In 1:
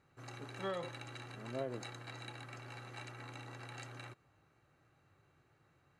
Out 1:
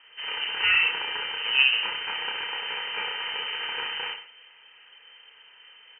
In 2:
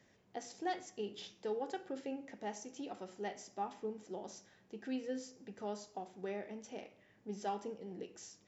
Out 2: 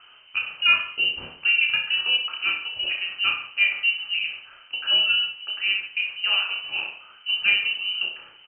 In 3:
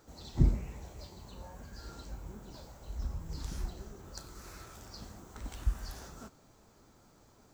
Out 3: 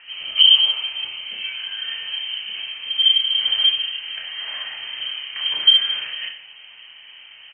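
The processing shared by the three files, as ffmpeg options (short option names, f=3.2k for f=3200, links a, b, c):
-filter_complex "[0:a]lowpass=f=2.7k:t=q:w=0.5098,lowpass=f=2.7k:t=q:w=0.6013,lowpass=f=2.7k:t=q:w=0.9,lowpass=f=2.7k:t=q:w=2.563,afreqshift=-3200,asplit=2[a][b];[b]aecho=0:1:30|63|99.3|139.2|183.2:0.631|0.398|0.251|0.158|0.1[c];[a][c]amix=inputs=2:normalize=0,alimiter=level_in=19dB:limit=-1dB:release=50:level=0:latency=1,volume=-2.5dB"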